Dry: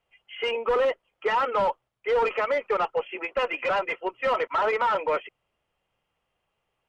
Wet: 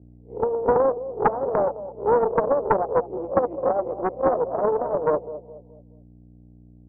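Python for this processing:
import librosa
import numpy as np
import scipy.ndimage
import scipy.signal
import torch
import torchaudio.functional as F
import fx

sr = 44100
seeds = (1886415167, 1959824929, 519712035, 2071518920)

p1 = fx.spec_swells(x, sr, rise_s=0.33)
p2 = fx.add_hum(p1, sr, base_hz=60, snr_db=20)
p3 = fx.quant_dither(p2, sr, seeds[0], bits=6, dither='none')
p4 = p2 + (p3 * librosa.db_to_amplitude(-8.0))
p5 = scipy.signal.sosfilt(scipy.signal.butter(2, 120.0, 'highpass', fs=sr, output='sos'), p4)
p6 = fx.low_shelf(p5, sr, hz=290.0, db=8.0)
p7 = fx.echo_feedback(p6, sr, ms=211, feedback_pct=37, wet_db=-12.5)
p8 = fx.transient(p7, sr, attack_db=5, sustain_db=0)
p9 = scipy.signal.sosfilt(scipy.signal.ellip(4, 1.0, 50, 740.0, 'lowpass', fs=sr, output='sos'), p8)
p10 = fx.peak_eq(p9, sr, hz=160.0, db=-8.5, octaves=0.77)
y = fx.doppler_dist(p10, sr, depth_ms=0.83)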